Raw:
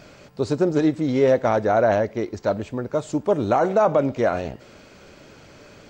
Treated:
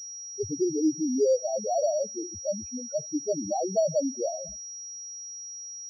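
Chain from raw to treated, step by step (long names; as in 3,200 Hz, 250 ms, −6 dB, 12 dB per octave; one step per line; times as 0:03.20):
noise reduction from a noise print of the clip's start 21 dB
spectral peaks only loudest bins 2
switching amplifier with a slow clock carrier 5,700 Hz
level −3.5 dB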